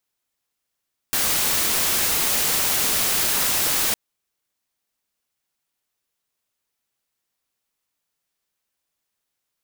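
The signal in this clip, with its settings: noise white, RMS -21 dBFS 2.81 s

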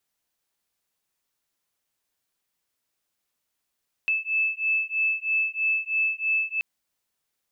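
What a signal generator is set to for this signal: beating tones 2620 Hz, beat 3.1 Hz, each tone -25.5 dBFS 2.53 s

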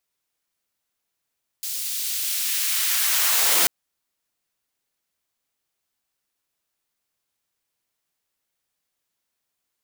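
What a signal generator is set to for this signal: swept filtered noise white, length 2.04 s highpass, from 4000 Hz, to 210 Hz, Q 0.83, linear, gain ramp +11 dB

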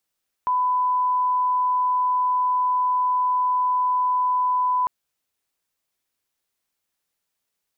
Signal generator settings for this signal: line-up tone -18 dBFS 4.40 s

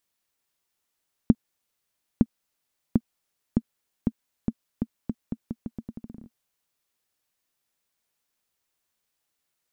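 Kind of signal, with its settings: bouncing ball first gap 0.91 s, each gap 0.82, 228 Hz, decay 49 ms -4 dBFS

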